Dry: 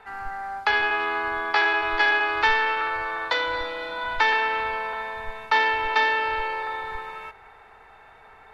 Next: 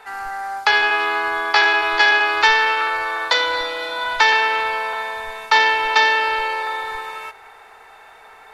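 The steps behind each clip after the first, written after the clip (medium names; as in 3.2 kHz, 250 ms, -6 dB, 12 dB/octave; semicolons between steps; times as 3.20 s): tone controls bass -11 dB, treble +11 dB; trim +5.5 dB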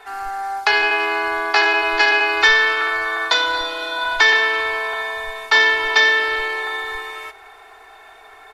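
comb 2.8 ms, depth 75%; trim -1 dB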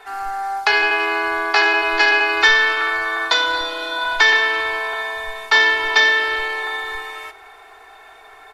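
reverberation, pre-delay 7 ms, DRR 15.5 dB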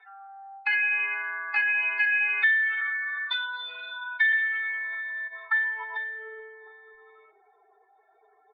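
spectral contrast enhancement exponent 2.3; band-pass sweep 2.3 kHz -> 330 Hz, 5.08–6.56 s; trim -4 dB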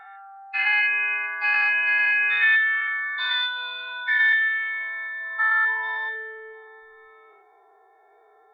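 every event in the spectrogram widened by 240 ms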